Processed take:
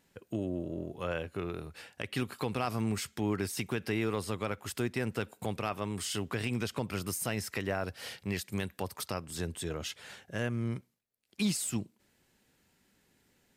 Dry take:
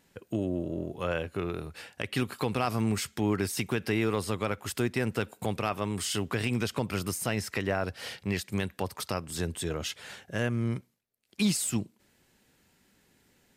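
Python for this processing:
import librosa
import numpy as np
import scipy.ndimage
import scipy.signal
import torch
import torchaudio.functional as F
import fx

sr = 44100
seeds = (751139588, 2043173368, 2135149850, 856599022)

y = fx.high_shelf(x, sr, hz=9300.0, db=6.5, at=(7.08, 9.06))
y = y * 10.0 ** (-4.0 / 20.0)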